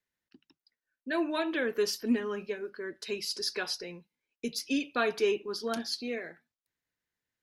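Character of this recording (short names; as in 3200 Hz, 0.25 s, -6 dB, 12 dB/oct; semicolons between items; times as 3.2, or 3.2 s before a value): noise floor -94 dBFS; spectral tilt -2.5 dB/oct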